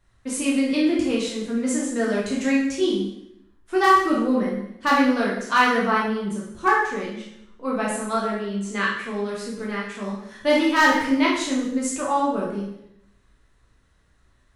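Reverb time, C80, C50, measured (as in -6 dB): 0.75 s, 6.0 dB, 3.0 dB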